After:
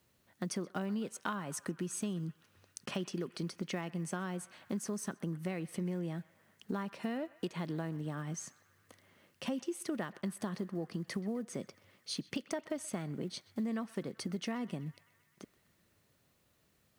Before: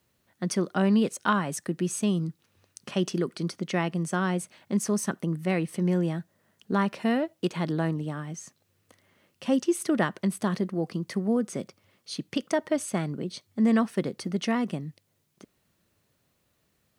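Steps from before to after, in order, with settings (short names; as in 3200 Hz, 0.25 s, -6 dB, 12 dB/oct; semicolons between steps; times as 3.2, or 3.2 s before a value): block floating point 7-bit; compressor 5:1, threshold -34 dBFS, peak gain reduction 14 dB; on a send: narrowing echo 0.128 s, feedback 78%, band-pass 1700 Hz, level -18 dB; on the sum: gain -1 dB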